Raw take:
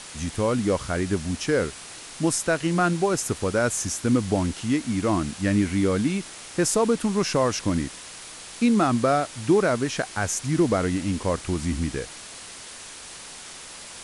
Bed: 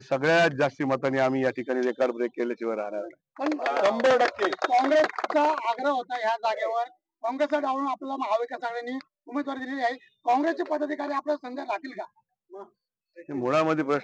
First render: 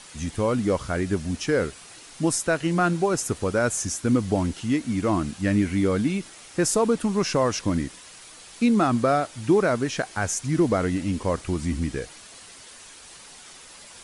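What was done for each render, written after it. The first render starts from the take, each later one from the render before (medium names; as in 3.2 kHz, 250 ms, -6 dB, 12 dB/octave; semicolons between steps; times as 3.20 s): noise reduction 7 dB, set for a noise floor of -41 dBFS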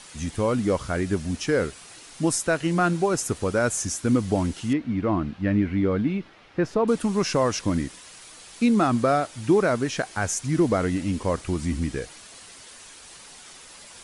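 4.73–6.88 s: distance through air 320 m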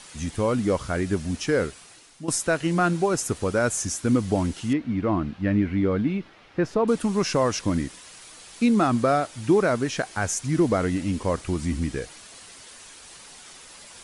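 1.61–2.28 s: fade out, to -14 dB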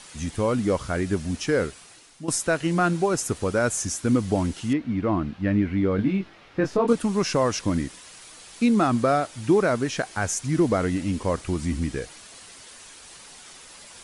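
5.96–6.93 s: doubling 21 ms -4 dB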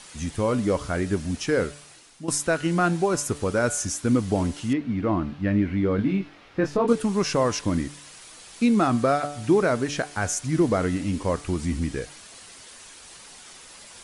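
de-hum 145.5 Hz, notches 27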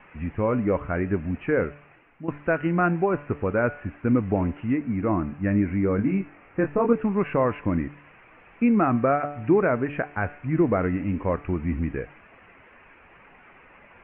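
steep low-pass 2.6 kHz 72 dB/octave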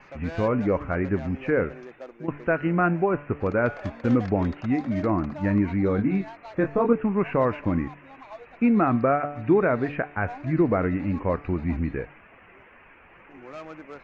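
add bed -17 dB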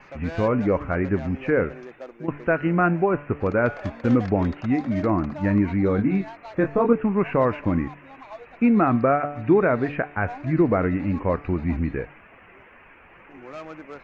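trim +2 dB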